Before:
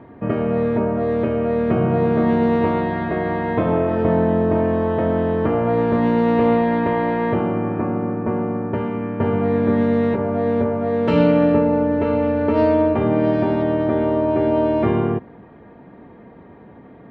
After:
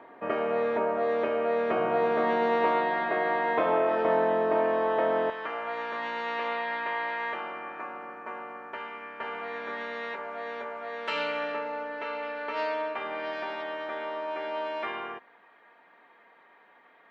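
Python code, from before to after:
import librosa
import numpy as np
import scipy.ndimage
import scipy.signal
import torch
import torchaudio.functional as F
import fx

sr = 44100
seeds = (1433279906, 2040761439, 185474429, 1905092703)

y = fx.highpass(x, sr, hz=fx.steps((0.0, 630.0), (5.3, 1400.0)), slope=12)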